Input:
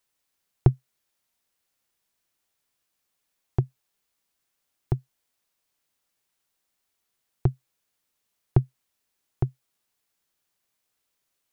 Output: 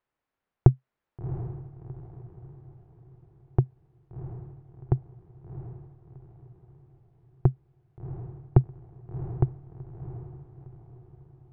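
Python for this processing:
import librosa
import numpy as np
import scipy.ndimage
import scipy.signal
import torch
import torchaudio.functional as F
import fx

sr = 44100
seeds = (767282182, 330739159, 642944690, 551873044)

y = scipy.signal.sosfilt(scipy.signal.butter(2, 1600.0, 'lowpass', fs=sr, output='sos'), x)
y = fx.echo_diffused(y, sr, ms=712, feedback_pct=43, wet_db=-11.0)
y = y * librosa.db_to_amplitude(1.5)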